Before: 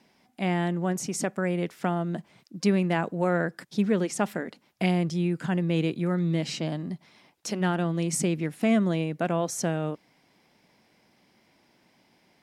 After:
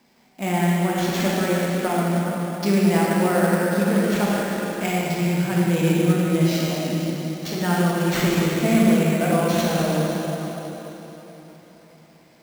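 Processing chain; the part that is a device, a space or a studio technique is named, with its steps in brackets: 3.87–5.09 s: peaking EQ 230 Hz -5 dB 2.3 oct; plate-style reverb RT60 4.1 s, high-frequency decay 0.85×, DRR -6.5 dB; early companding sampler (sample-rate reducer 10 kHz, jitter 0%; companded quantiser 6-bit)

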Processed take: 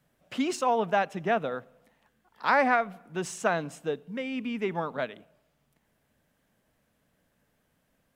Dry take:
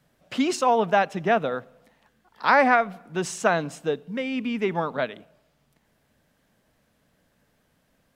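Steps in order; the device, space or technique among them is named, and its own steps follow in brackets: exciter from parts (in parallel at -9 dB: high-pass 3.7 kHz 6 dB/octave + saturation -30.5 dBFS, distortion -7 dB + high-pass 3.5 kHz 24 dB/octave); on the sum: trim -5 dB

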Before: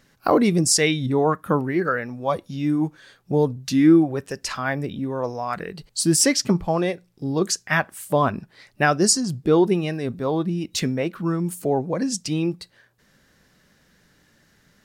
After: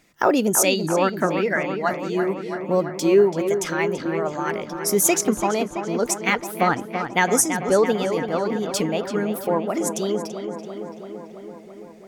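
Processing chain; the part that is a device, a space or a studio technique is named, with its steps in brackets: nightcore (tape speed +23%); bass shelf 190 Hz -4.5 dB; filtered feedback delay 334 ms, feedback 74%, low-pass 3.7 kHz, level -8 dB

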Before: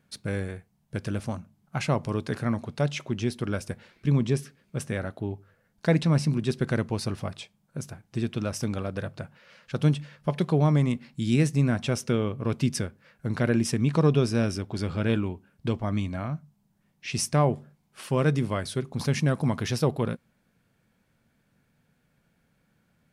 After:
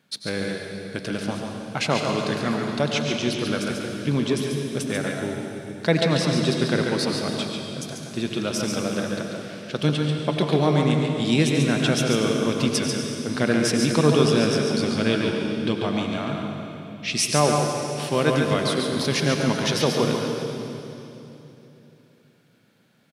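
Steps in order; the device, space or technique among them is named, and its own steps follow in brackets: PA in a hall (high-pass 190 Hz 12 dB/octave; peaking EQ 3.8 kHz +7.5 dB 1 oct; delay 141 ms -5.5 dB; reverberation RT60 3.2 s, pre-delay 82 ms, DRR 3 dB); trim +3.5 dB

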